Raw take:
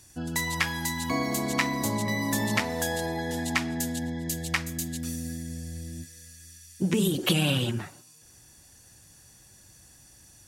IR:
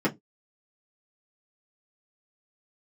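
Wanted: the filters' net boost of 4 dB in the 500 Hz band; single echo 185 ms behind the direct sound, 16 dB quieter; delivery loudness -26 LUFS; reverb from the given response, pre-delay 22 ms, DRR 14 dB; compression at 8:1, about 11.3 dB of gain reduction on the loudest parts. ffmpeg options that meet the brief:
-filter_complex "[0:a]equalizer=f=500:t=o:g=5,acompressor=threshold=0.0282:ratio=8,aecho=1:1:185:0.158,asplit=2[s0][s1];[1:a]atrim=start_sample=2205,adelay=22[s2];[s1][s2]afir=irnorm=-1:irlink=0,volume=0.0501[s3];[s0][s3]amix=inputs=2:normalize=0,volume=2.82"

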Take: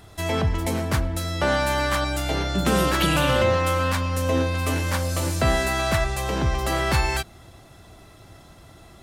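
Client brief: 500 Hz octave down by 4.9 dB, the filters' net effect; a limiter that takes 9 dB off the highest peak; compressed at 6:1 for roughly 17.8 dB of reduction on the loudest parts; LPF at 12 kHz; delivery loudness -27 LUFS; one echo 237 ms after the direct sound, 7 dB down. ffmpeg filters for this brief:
-af "lowpass=12000,equalizer=f=500:t=o:g=-6,acompressor=threshold=0.0126:ratio=6,alimiter=level_in=3.76:limit=0.0631:level=0:latency=1,volume=0.266,aecho=1:1:237:0.447,volume=7.5"

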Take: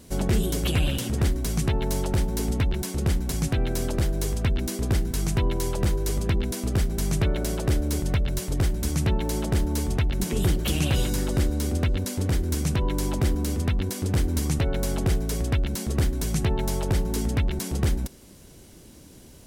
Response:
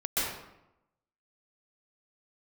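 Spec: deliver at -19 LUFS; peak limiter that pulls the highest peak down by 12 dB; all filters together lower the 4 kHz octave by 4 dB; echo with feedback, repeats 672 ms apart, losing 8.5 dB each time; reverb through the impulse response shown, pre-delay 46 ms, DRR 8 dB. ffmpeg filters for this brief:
-filter_complex "[0:a]equalizer=f=4000:t=o:g=-5.5,alimiter=level_in=1.06:limit=0.0631:level=0:latency=1,volume=0.944,aecho=1:1:672|1344|2016|2688:0.376|0.143|0.0543|0.0206,asplit=2[s0][s1];[1:a]atrim=start_sample=2205,adelay=46[s2];[s1][s2]afir=irnorm=-1:irlink=0,volume=0.133[s3];[s0][s3]amix=inputs=2:normalize=0,volume=4.22"

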